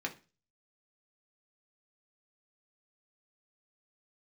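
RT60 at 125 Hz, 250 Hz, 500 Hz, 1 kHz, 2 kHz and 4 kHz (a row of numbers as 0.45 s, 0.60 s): 0.45 s, 0.35 s, 0.35 s, 0.30 s, 0.35 s, 0.35 s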